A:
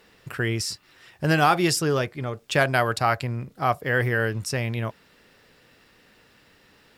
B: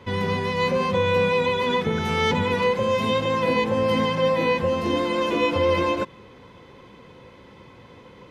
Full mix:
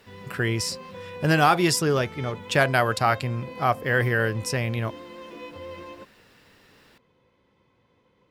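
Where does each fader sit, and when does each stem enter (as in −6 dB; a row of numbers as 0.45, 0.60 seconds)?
+0.5, −18.5 decibels; 0.00, 0.00 seconds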